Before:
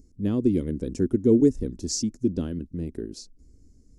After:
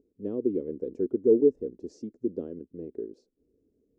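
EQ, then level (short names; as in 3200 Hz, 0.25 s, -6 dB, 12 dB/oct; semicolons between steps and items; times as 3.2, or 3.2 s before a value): band-pass 450 Hz, Q 3.4; +3.0 dB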